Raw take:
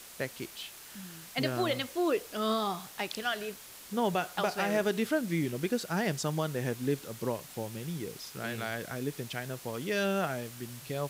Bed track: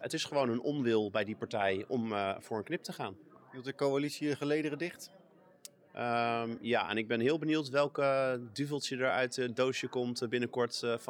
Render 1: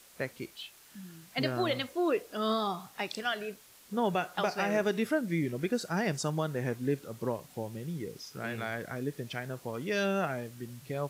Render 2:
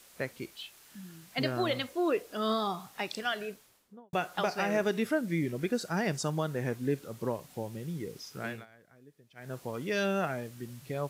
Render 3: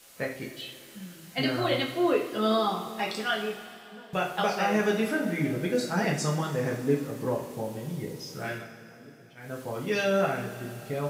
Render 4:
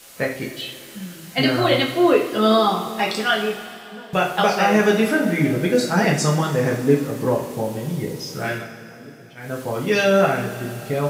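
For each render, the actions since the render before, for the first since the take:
noise print and reduce 8 dB
3.43–4.13 s: studio fade out; 8.47–9.54 s: dip -22 dB, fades 0.19 s
two-slope reverb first 0.42 s, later 3.5 s, from -17 dB, DRR -2.5 dB
trim +9 dB

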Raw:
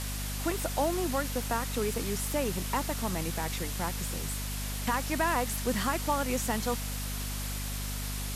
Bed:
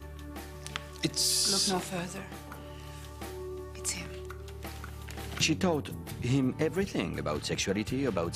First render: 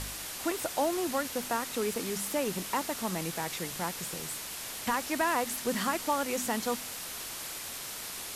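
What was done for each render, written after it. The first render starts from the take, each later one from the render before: de-hum 50 Hz, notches 5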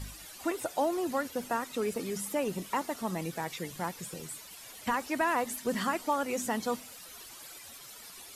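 noise reduction 13 dB, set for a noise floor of -40 dBFS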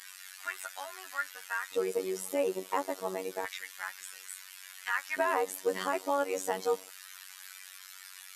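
LFO high-pass square 0.29 Hz 410–1600 Hz; robot voice 94.1 Hz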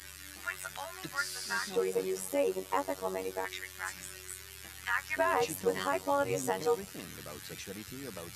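add bed -14 dB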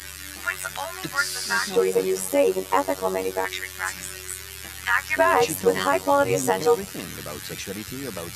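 trim +10.5 dB

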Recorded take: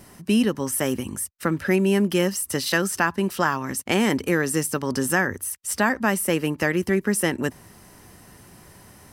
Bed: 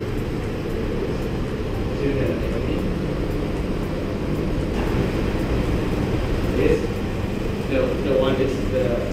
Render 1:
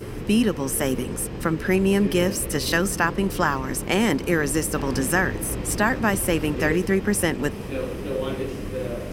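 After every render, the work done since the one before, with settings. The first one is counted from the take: add bed -8 dB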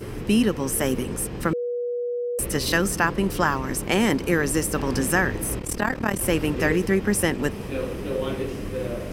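1.53–2.39 s: bleep 484 Hz -24 dBFS; 5.59–6.21 s: AM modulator 38 Hz, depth 75%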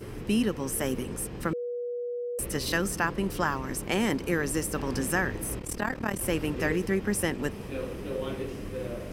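trim -6 dB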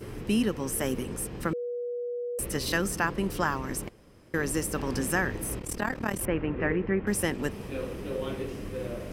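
3.89–4.34 s: room tone; 6.25–7.07 s: low-pass 2.4 kHz 24 dB/octave

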